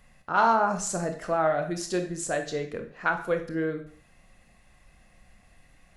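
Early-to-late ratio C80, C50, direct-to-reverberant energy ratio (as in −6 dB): 14.0 dB, 10.0 dB, 5.0 dB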